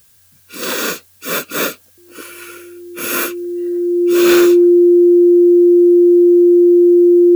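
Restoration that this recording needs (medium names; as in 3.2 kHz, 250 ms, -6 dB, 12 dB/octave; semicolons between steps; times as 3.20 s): clip repair -5 dBFS; band-stop 350 Hz, Q 30; expander -42 dBFS, range -21 dB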